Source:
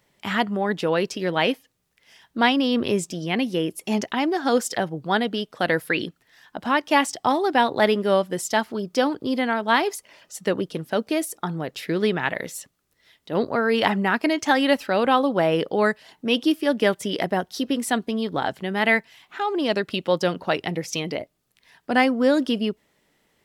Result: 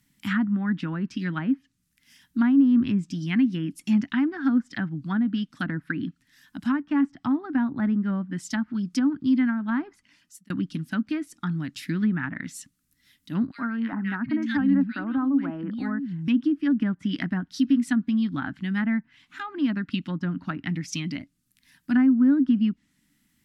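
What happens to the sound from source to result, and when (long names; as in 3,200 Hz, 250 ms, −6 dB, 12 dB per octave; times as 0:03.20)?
0:09.90–0:10.50: fade out
0:13.51–0:16.28: three-band delay without the direct sound highs, mids, lows 70/740 ms, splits 210/2,000 Hz
whole clip: dynamic equaliser 1,500 Hz, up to +7 dB, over −36 dBFS, Q 1.3; treble cut that deepens with the level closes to 770 Hz, closed at −15.5 dBFS; drawn EQ curve 130 Hz 0 dB, 280 Hz +4 dB, 450 Hz −30 dB, 1,500 Hz −6 dB, 3,300 Hz −6 dB, 13,000 Hz +4 dB; level +1 dB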